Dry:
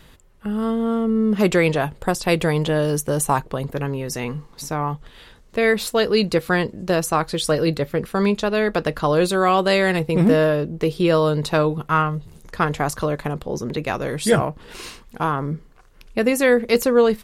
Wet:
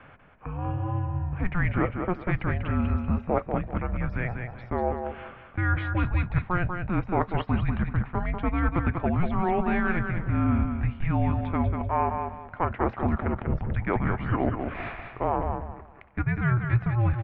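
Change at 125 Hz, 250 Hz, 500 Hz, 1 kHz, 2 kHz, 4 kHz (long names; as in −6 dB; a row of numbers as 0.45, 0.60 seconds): −0.5, −7.0, −13.5, −5.5, −7.5, −22.0 decibels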